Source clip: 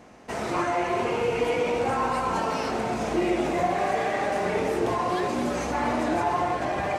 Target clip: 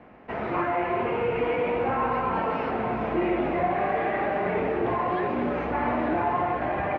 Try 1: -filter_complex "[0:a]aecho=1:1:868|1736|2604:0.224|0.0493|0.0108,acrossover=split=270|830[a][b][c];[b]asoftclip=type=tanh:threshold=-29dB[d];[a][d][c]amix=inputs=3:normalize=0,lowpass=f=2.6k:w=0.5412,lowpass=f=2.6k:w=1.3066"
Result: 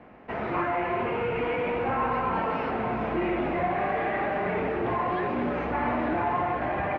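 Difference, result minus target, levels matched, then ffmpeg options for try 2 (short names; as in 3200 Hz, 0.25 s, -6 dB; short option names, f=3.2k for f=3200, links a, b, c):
soft clip: distortion +12 dB
-filter_complex "[0:a]aecho=1:1:868|1736|2604:0.224|0.0493|0.0108,acrossover=split=270|830[a][b][c];[b]asoftclip=type=tanh:threshold=-19.5dB[d];[a][d][c]amix=inputs=3:normalize=0,lowpass=f=2.6k:w=0.5412,lowpass=f=2.6k:w=1.3066"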